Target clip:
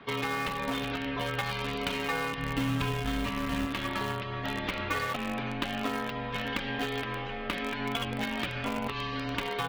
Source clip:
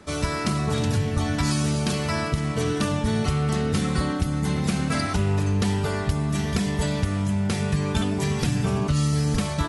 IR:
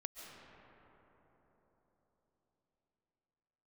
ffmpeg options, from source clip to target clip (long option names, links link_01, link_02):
-filter_complex "[0:a]highpass=frequency=340:width_type=q:width=0.5412,highpass=frequency=340:width_type=q:width=1.307,lowpass=frequency=3400:width_type=q:width=0.5176,lowpass=frequency=3400:width_type=q:width=0.7071,lowpass=frequency=3400:width_type=q:width=1.932,afreqshift=-170,crystalizer=i=3:c=0,asplit=3[link_01][link_02][link_03];[link_01]afade=type=out:start_time=2.37:duration=0.02[link_04];[link_02]asubboost=boost=3.5:cutoff=250,afade=type=in:start_time=2.37:duration=0.02,afade=type=out:start_time=3.65:duration=0.02[link_05];[link_03]afade=type=in:start_time=3.65:duration=0.02[link_06];[link_04][link_05][link_06]amix=inputs=3:normalize=0,asplit=3[link_07][link_08][link_09];[link_07]afade=type=out:start_time=7.68:duration=0.02[link_10];[link_08]bandreject=frequency=50:width_type=h:width=6,bandreject=frequency=100:width_type=h:width=6,bandreject=frequency=150:width_type=h:width=6,bandreject=frequency=200:width_type=h:width=6,bandreject=frequency=250:width_type=h:width=6,bandreject=frequency=300:width_type=h:width=6,bandreject=frequency=350:width_type=h:width=6,bandreject=frequency=400:width_type=h:width=6,bandreject=frequency=450:width_type=h:width=6,afade=type=in:start_time=7.68:duration=0.02,afade=type=out:start_time=8.87:duration=0.02[link_11];[link_09]afade=type=in:start_time=8.87:duration=0.02[link_12];[link_10][link_11][link_12]amix=inputs=3:normalize=0,asplit=2[link_13][link_14];[link_14]acrusher=bits=3:mix=0:aa=0.000001,volume=-10dB[link_15];[link_13][link_15]amix=inputs=2:normalize=0,acompressor=threshold=-29dB:ratio=2.5"